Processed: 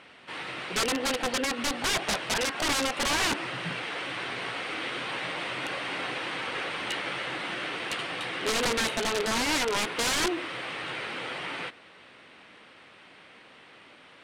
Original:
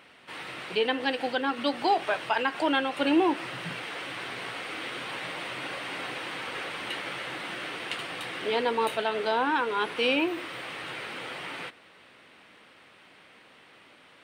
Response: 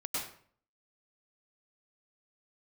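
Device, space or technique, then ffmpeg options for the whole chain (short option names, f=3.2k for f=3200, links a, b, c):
overflowing digital effects unit: -af "aeval=exprs='(mod(14.1*val(0)+1,2)-1)/14.1':c=same,lowpass=8.6k,volume=2.5dB"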